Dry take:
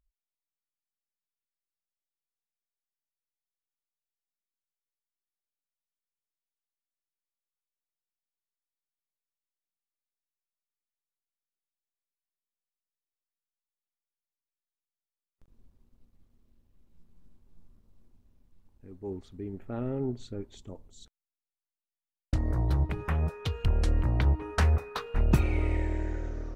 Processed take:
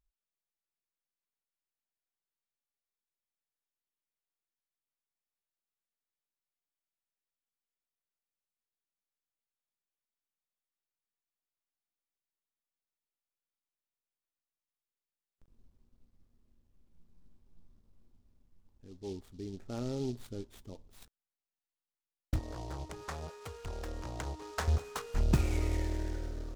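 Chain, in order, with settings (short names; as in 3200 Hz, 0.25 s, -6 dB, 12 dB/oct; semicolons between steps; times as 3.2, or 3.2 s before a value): 22.39–24.68 three-band isolator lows -13 dB, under 370 Hz, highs -13 dB, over 2200 Hz; noise-modulated delay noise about 4300 Hz, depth 0.051 ms; gain -4 dB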